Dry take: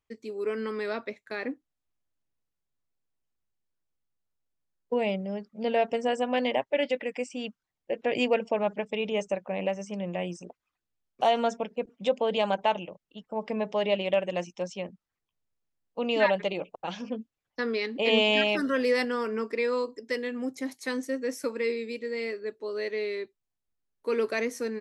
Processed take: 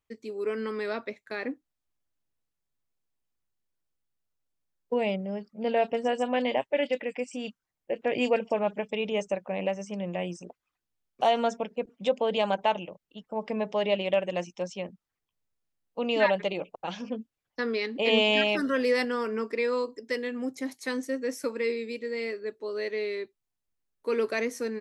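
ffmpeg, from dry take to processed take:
ffmpeg -i in.wav -filter_complex "[0:a]asettb=1/sr,asplit=3[link_01][link_02][link_03];[link_01]atrim=end=5.164[link_04];[link_02]atrim=start=5.16:end=8.89,asetpts=PTS-STARTPTS,afade=type=in:duration=0.004:curve=qsin,afade=type=out:start_time=3.726:duration=0.004:curve=qsin,acrossover=split=3800[link_05][link_06];[link_06]adelay=30[link_07];[link_05][link_07]amix=inputs=2:normalize=0,atrim=end_sample=164493[link_08];[link_03]atrim=start=8.886[link_09];[link_04][link_08]acrossfade=duration=0.004:curve1=hsin:curve2=qsin[link_10];[link_10][link_09]acrossfade=duration=0.004:curve1=qsin:curve2=hsin" out.wav

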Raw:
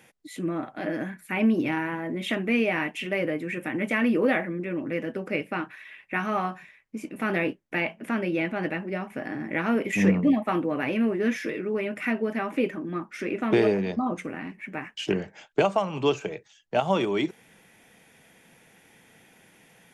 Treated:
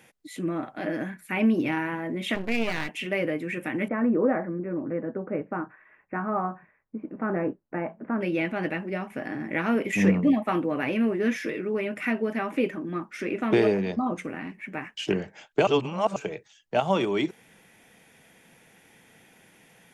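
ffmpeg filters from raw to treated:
ffmpeg -i in.wav -filter_complex "[0:a]asettb=1/sr,asplit=3[link_01][link_02][link_03];[link_01]atrim=end=2.354[link_04];[link_02]atrim=start=2.35:end=2.89,asetpts=PTS-STARTPTS,afade=type=in:duration=0.004:curve=qsin,afade=type=out:start_time=0.536:duration=0.004:curve=qsin,aeval=exprs='max(val(0),0)':channel_layout=same[link_05];[link_03]atrim=start=2.886[link_06];[link_04][link_05]acrossfade=duration=0.004:curve1=hsin:curve2=qsin[link_07];[link_07][link_06]acrossfade=duration=0.004:curve1=qsin:curve2=hsin,asettb=1/sr,asplit=3[link_08][link_09][link_10];[link_08]atrim=end=3.884[link_11];[link_09]atrim=start=3.88:end=8.21,asetpts=PTS-STARTPTS,afade=type=in:duration=0.004:curve=qsin,afade=type=out:start_time=4.326:duration=0.004:curve=qsin,lowpass=frequency=1400:width=0.5412,lowpass=frequency=1400:width=1.3066[link_12];[link_10]atrim=start=8.206[link_13];[link_11][link_12]acrossfade=duration=0.004:curve1=hsin:curve2=qsin[link_14];[link_14][link_13]acrossfade=duration=0.004:curve1=qsin:curve2=hsin,asplit=3[link_15][link_16][link_17];[link_15]atrim=end=15.672[link_18];[link_16]atrim=start=15.668:end=16.162,asetpts=PTS-STARTPTS,areverse[link_19];[link_17]atrim=start=16.158[link_20];[link_18][link_19]acrossfade=duration=0.004:curve1=hsin:curve2=hsin[link_21];[link_21][link_20]acrossfade=duration=0.004:curve1=hsin:curve2=hsin" out.wav

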